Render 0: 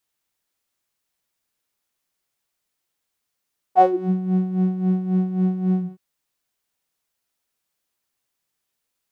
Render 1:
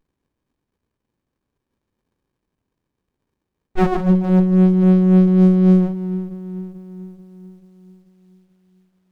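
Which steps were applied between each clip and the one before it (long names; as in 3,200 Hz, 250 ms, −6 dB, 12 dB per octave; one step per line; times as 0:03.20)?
flat-topped bell 1,100 Hz −9 dB
echo with a time of its own for lows and highs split 370 Hz, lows 437 ms, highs 145 ms, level −10 dB
windowed peak hold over 65 samples
level +8 dB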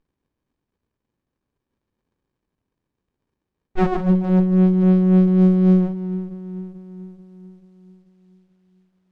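high-frequency loss of the air 54 metres
level −2 dB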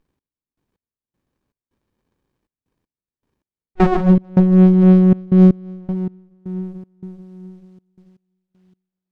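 gate pattern "x..x..xx.xxxx." 79 BPM −24 dB
level +5 dB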